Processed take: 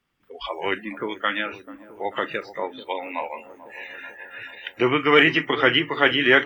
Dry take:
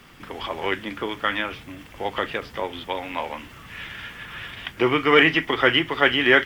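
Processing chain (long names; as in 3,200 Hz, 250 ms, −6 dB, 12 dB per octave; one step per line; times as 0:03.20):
noise reduction from a noise print of the clip's start 26 dB
delay with a low-pass on its return 438 ms, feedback 68%, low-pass 890 Hz, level −14.5 dB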